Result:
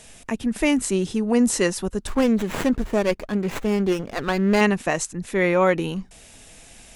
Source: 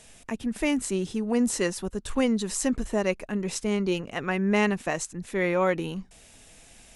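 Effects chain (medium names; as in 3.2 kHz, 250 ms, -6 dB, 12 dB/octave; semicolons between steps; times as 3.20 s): 2.07–4.61 s: sliding maximum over 9 samples; trim +5.5 dB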